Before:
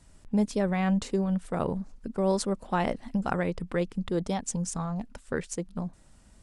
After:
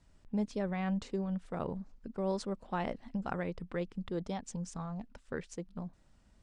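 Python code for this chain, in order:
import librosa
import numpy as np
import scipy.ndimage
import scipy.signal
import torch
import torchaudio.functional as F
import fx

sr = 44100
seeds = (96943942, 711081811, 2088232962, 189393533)

y = scipy.signal.sosfilt(scipy.signal.butter(2, 5600.0, 'lowpass', fs=sr, output='sos'), x)
y = y * librosa.db_to_amplitude(-8.0)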